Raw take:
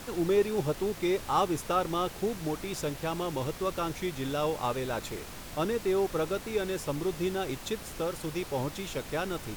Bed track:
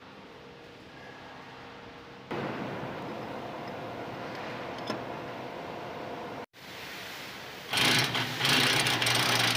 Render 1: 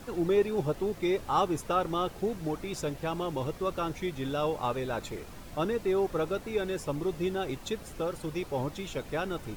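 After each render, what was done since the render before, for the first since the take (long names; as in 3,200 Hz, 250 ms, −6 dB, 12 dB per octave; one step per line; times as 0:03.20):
broadband denoise 8 dB, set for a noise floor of −44 dBFS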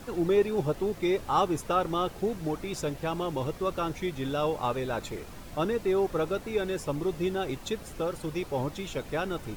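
level +1.5 dB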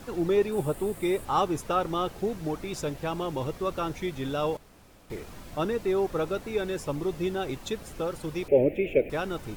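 0:00.52–0:01.25: high shelf with overshoot 7,200 Hz +6.5 dB, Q 3
0:04.57–0:05.10: fill with room tone
0:08.48–0:09.10: drawn EQ curve 170 Hz 0 dB, 390 Hz +13 dB, 600 Hz +12 dB, 1,100 Hz −25 dB, 2,400 Hz +12 dB, 4,000 Hz −23 dB, 6,000 Hz −25 dB, 16,000 Hz −2 dB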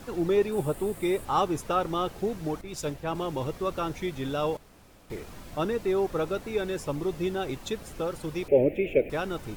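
0:02.61–0:03.15: multiband upward and downward expander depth 100%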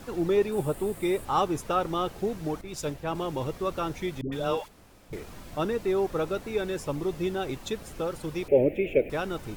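0:04.21–0:05.13: all-pass dispersion highs, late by 112 ms, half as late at 540 Hz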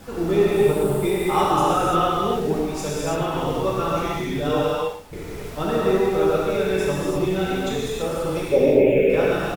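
single-tap delay 112 ms −13 dB
reverb whose tail is shaped and stops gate 360 ms flat, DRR −7.5 dB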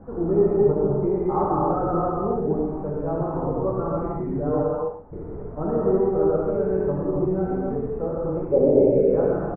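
Bessel low-pass filter 770 Hz, order 6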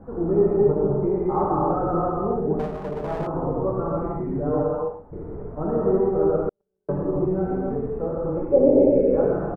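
0:02.59–0:03.27: lower of the sound and its delayed copy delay 4.8 ms
0:06.49–0:06.89: noise gate −15 dBFS, range −56 dB
0:08.37–0:09.23: comb filter 3.6 ms, depth 49%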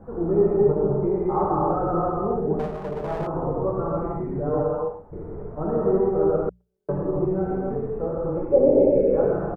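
parametric band 270 Hz −7 dB 0.2 octaves
mains-hum notches 60/120/180 Hz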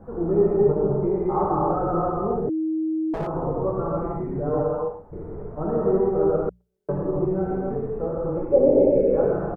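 0:02.49–0:03.14: beep over 317 Hz −21.5 dBFS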